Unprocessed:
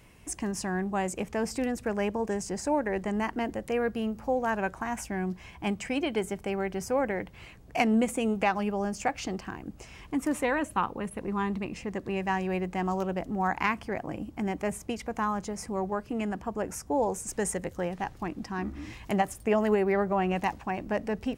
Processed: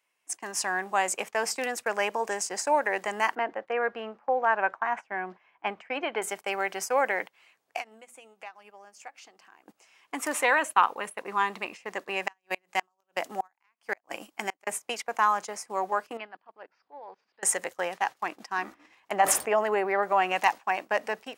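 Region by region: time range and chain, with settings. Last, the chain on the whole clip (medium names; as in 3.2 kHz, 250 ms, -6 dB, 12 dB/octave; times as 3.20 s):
3.35–6.22 s: low-pass 1.9 kHz + bass shelf 130 Hz -3.5 dB
7.76–9.64 s: hum notches 60/120/180/240/300 Hz + compression 10:1, threshold -35 dBFS
12.27–14.67 s: treble shelf 2.7 kHz +7 dB + inverted gate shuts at -20 dBFS, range -34 dB
16.17–17.43 s: Chebyshev low-pass 4.8 kHz, order 6 + hum notches 50/100/150 Hz + level held to a coarse grid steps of 19 dB
18.74–20.03 s: treble shelf 2.2 kHz -11 dB + decay stretcher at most 35 dB/s
whole clip: gate -36 dBFS, range -18 dB; high-pass 780 Hz 12 dB/octave; level rider gain up to 7 dB; trim +1.5 dB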